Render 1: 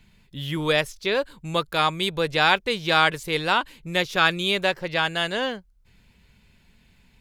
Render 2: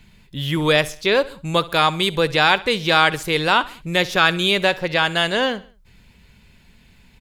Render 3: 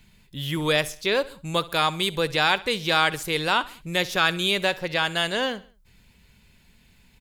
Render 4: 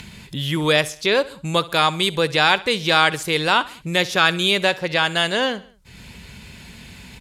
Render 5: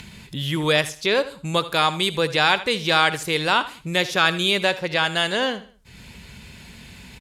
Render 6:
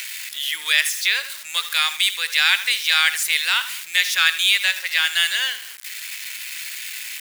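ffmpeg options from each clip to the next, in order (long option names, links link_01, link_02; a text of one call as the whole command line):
ffmpeg -i in.wav -filter_complex "[0:a]asplit=2[link_01][link_02];[link_02]alimiter=limit=-13.5dB:level=0:latency=1,volume=0.5dB[link_03];[link_01][link_03]amix=inputs=2:normalize=0,aecho=1:1:66|132|198:0.106|0.0477|0.0214" out.wav
ffmpeg -i in.wav -af "highshelf=frequency=6100:gain=7.5,volume=-6dB" out.wav
ffmpeg -i in.wav -filter_complex "[0:a]highpass=59,asplit=2[link_01][link_02];[link_02]acompressor=mode=upward:threshold=-24dB:ratio=2.5,volume=0.5dB[link_03];[link_01][link_03]amix=inputs=2:normalize=0,lowpass=11000,volume=-1.5dB" out.wav
ffmpeg -i in.wav -af "aecho=1:1:80:0.15,volume=-2dB" out.wav
ffmpeg -i in.wav -af "aeval=exprs='val(0)+0.5*0.0282*sgn(val(0))':channel_layout=same,highpass=frequency=1900:width_type=q:width=2.2,crystalizer=i=2.5:c=0,volume=-4dB" out.wav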